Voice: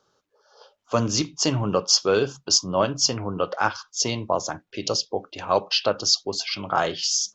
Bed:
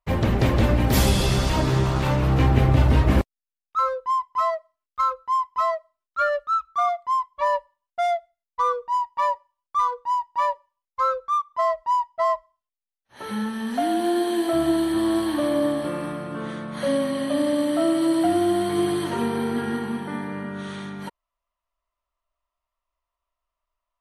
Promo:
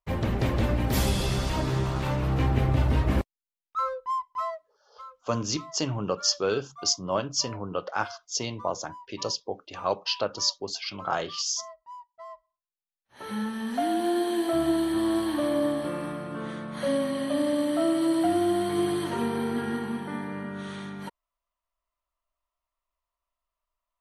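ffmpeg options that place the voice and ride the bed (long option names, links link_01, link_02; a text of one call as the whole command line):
ffmpeg -i stem1.wav -i stem2.wav -filter_complex "[0:a]adelay=4350,volume=-6dB[link_01];[1:a]volume=12.5dB,afade=type=out:start_time=4.22:duration=0.74:silence=0.158489,afade=type=in:start_time=12.3:duration=1.1:silence=0.11885[link_02];[link_01][link_02]amix=inputs=2:normalize=0" out.wav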